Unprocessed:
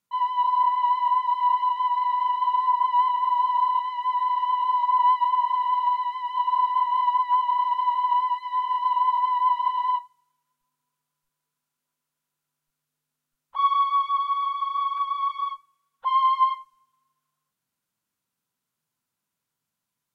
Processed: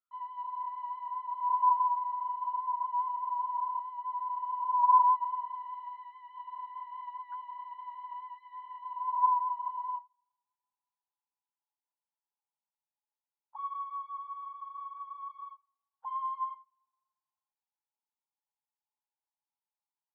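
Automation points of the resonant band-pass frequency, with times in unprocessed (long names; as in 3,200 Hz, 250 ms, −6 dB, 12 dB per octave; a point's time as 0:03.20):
resonant band-pass, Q 12
0:01.10 1,300 Hz
0:02.07 860 Hz
0:04.56 860 Hz
0:05.92 1,500 Hz
0:08.78 1,500 Hz
0:09.47 850 Hz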